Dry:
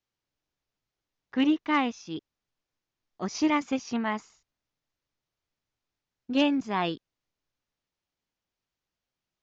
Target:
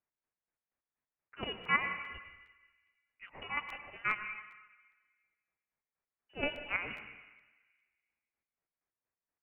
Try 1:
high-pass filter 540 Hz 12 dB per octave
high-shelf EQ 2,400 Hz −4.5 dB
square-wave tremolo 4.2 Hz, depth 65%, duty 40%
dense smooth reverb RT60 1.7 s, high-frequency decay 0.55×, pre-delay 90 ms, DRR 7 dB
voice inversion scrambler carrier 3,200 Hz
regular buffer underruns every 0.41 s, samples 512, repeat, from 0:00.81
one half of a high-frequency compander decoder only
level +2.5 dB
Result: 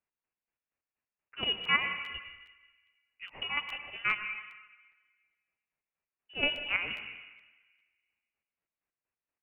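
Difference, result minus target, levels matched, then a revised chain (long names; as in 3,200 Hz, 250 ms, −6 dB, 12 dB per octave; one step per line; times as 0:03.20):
500 Hz band −4.0 dB
high-pass filter 1,100 Hz 12 dB per octave
high-shelf EQ 2,400 Hz −4.5 dB
square-wave tremolo 4.2 Hz, depth 65%, duty 40%
dense smooth reverb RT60 1.7 s, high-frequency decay 0.55×, pre-delay 90 ms, DRR 7 dB
voice inversion scrambler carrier 3,200 Hz
regular buffer underruns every 0.41 s, samples 512, repeat, from 0:00.81
one half of a high-frequency compander decoder only
level +2.5 dB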